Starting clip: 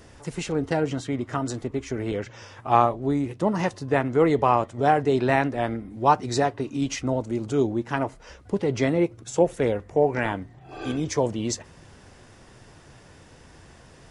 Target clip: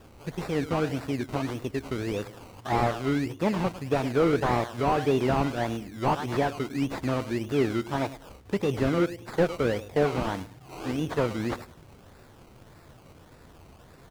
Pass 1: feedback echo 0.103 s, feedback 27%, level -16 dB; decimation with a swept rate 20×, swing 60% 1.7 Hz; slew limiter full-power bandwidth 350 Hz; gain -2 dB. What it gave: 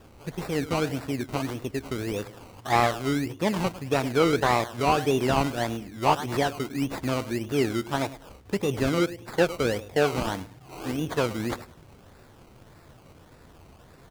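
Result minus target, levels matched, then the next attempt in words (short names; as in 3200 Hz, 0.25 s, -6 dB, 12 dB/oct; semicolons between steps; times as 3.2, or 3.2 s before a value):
slew limiter: distortion -6 dB
feedback echo 0.103 s, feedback 27%, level -16 dB; decimation with a swept rate 20×, swing 60% 1.7 Hz; slew limiter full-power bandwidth 107.5 Hz; gain -2 dB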